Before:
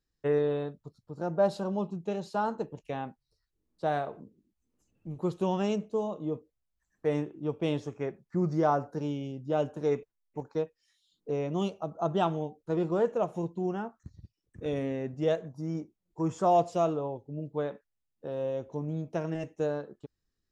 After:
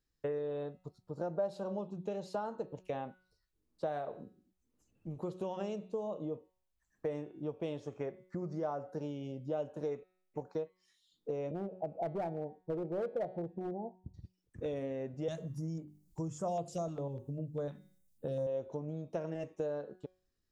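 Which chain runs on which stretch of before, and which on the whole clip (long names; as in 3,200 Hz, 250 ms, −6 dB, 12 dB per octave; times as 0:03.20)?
0:11.51–0:14.14: Butterworth low-pass 870 Hz 72 dB per octave + gain into a clipping stage and back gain 25 dB
0:15.28–0:18.47: bass and treble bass +13 dB, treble +15 dB + mains-hum notches 50/100/150/200/250/300/350/400 Hz + notch on a step sequencer 10 Hz 490–5,700 Hz
whole clip: hum removal 184.6 Hz, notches 26; downward compressor 6 to 1, threshold −37 dBFS; dynamic equaliser 560 Hz, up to +7 dB, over −55 dBFS, Q 2.1; level −1 dB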